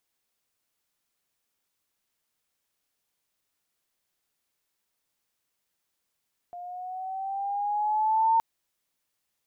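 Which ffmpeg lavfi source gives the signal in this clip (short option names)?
-f lavfi -i "aevalsrc='pow(10,(-18+19*(t/1.87-1))/20)*sin(2*PI*702*1.87/(4.5*log(2)/12)*(exp(4.5*log(2)/12*t/1.87)-1))':d=1.87:s=44100"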